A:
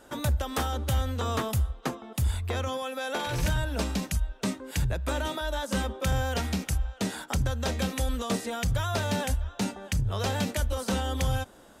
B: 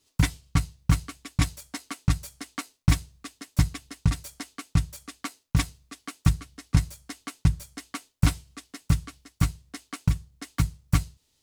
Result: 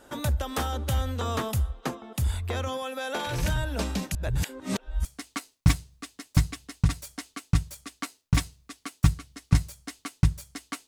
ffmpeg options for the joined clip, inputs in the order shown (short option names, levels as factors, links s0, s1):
-filter_complex "[0:a]apad=whole_dur=10.87,atrim=end=10.87,asplit=2[s0][s1];[s0]atrim=end=4.152[s2];[s1]atrim=start=4.148:end=5.052,asetpts=PTS-STARTPTS,areverse[s3];[1:a]atrim=start=2.268:end=8.09[s4];[s2][s3]acrossfade=d=0.004:c1=hsin:c2=hsin[s5];[s5][s4]acrossfade=d=0.004:c1=hsin:c2=hsin"